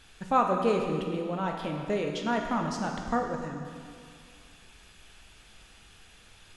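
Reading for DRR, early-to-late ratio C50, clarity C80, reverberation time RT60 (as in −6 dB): 1.5 dB, 3.5 dB, 4.5 dB, 2.2 s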